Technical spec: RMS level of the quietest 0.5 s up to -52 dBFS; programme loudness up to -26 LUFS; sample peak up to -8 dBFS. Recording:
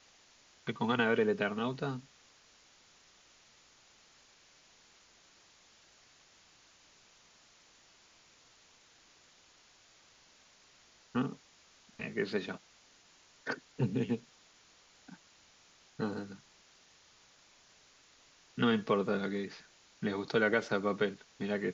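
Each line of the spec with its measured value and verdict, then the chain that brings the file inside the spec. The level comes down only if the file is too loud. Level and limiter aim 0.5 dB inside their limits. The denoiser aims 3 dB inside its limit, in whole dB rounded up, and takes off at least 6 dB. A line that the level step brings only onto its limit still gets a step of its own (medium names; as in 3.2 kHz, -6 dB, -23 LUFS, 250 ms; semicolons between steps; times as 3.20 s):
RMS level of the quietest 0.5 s -63 dBFS: pass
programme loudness -34.5 LUFS: pass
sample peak -17.0 dBFS: pass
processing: none needed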